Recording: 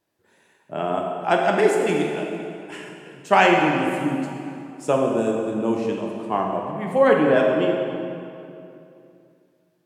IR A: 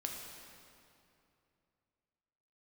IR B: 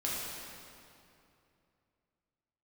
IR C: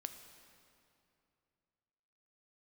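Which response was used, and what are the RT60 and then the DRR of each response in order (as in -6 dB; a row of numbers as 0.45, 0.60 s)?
A; 2.7, 2.7, 2.7 s; 0.0, -6.5, 7.0 dB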